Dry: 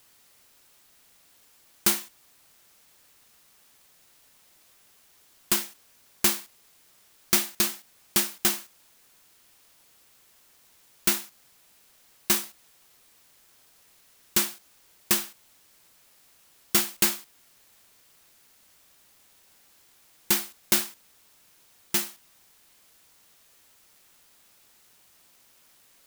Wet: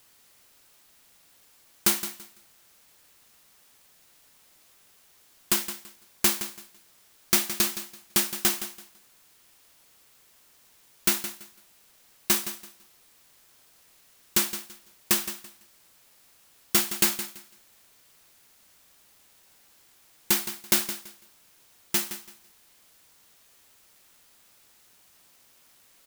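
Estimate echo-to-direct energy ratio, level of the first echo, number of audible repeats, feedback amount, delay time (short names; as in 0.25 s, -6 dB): -12.0 dB, -12.0 dB, 2, 23%, 0.167 s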